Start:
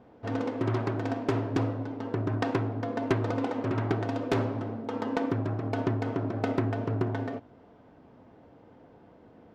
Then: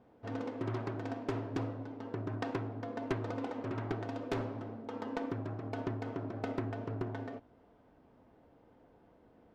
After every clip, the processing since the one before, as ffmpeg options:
-af "asubboost=boost=3:cutoff=56,volume=0.398"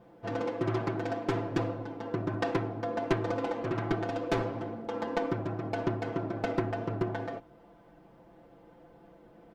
-af "aecho=1:1:5.9:0.84,volume=1.78"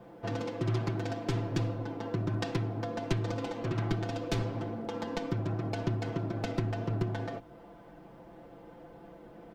-filter_complex "[0:a]acrossover=split=200|3000[s0][s1][s2];[s1]acompressor=threshold=0.00794:ratio=4[s3];[s0][s3][s2]amix=inputs=3:normalize=0,volume=1.78"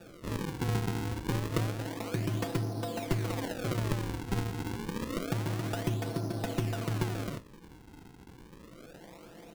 -af "acrusher=samples=42:mix=1:aa=0.000001:lfo=1:lforange=67.2:lforate=0.28"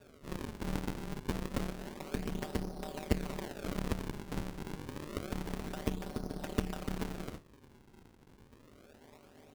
-af "aeval=exprs='val(0)*sin(2*PI*75*n/s)':c=same,aeval=exprs='0.158*(cos(1*acos(clip(val(0)/0.158,-1,1)))-cos(1*PI/2))+0.0316*(cos(3*acos(clip(val(0)/0.158,-1,1)))-cos(3*PI/2))+0.00631*(cos(8*acos(clip(val(0)/0.158,-1,1)))-cos(8*PI/2))':c=same,volume=1.5"

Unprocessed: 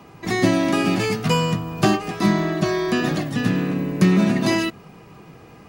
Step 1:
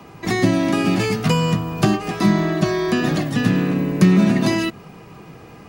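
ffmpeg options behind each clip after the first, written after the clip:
-filter_complex "[0:a]acrossover=split=260[s0][s1];[s1]acompressor=threshold=0.0708:ratio=4[s2];[s0][s2]amix=inputs=2:normalize=0,volume=1.5"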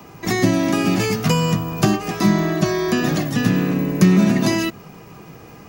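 -af "aexciter=amount=1.8:drive=3.9:freq=5400"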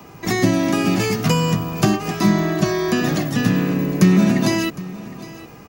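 -af "aecho=1:1:760:0.119"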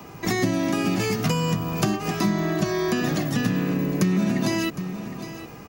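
-af "acompressor=threshold=0.0794:ratio=2.5"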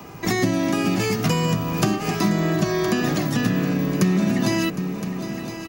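-af "aecho=1:1:1016:0.266,volume=1.26"

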